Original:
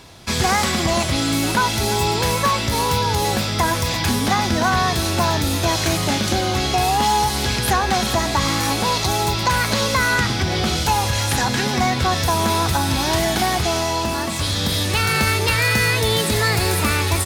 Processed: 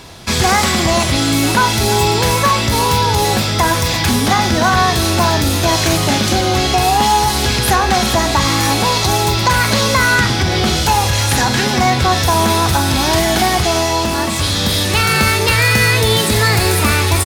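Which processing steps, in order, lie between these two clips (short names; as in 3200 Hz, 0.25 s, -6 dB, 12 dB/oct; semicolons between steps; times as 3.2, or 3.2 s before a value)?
in parallel at -6 dB: soft clip -24.5 dBFS, distortion -7 dB; on the sum: doubler 46 ms -11.5 dB; gain +3.5 dB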